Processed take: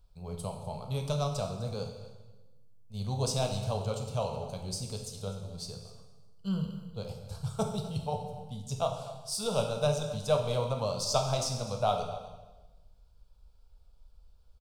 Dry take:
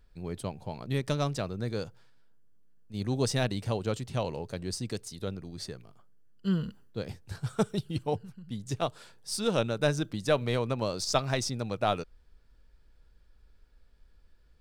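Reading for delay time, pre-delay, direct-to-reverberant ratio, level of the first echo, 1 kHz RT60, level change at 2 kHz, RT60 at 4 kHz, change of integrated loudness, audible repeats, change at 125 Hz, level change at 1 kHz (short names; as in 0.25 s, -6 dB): 0.251 s, 12 ms, 3.0 dB, -16.5 dB, 1.1 s, -9.5 dB, 1.1 s, -1.5 dB, 1, -0.5 dB, +0.5 dB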